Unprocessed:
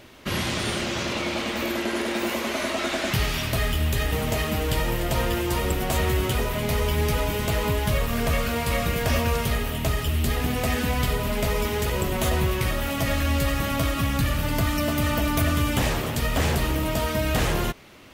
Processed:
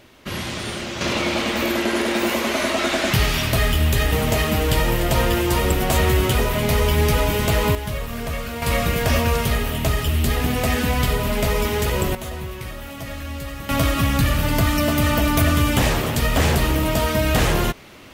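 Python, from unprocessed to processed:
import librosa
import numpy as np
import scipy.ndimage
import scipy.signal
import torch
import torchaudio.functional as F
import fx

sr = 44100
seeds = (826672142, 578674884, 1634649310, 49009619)

y = fx.gain(x, sr, db=fx.steps((0.0, -1.5), (1.01, 5.5), (7.75, -3.5), (8.62, 4.0), (12.15, -7.5), (13.69, 5.0)))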